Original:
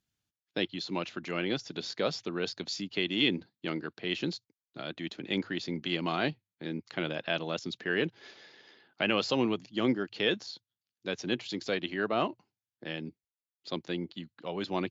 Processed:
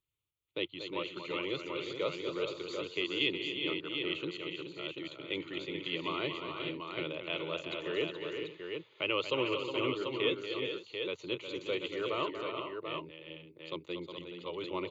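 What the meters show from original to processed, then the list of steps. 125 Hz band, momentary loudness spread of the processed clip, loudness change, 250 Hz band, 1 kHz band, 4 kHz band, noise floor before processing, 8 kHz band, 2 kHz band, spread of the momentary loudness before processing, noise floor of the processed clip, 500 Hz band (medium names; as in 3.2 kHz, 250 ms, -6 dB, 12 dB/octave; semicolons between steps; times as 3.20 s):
-7.5 dB, 9 LU, -3.0 dB, -6.0 dB, -3.0 dB, -2.0 dB, under -85 dBFS, no reading, -3.0 dB, 13 LU, -64 dBFS, -1.0 dB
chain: static phaser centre 1.1 kHz, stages 8; on a send: multi-tap echo 235/362/424/494/738 ms -9/-8/-8.5/-17.5/-6 dB; on the sum: trim -2 dB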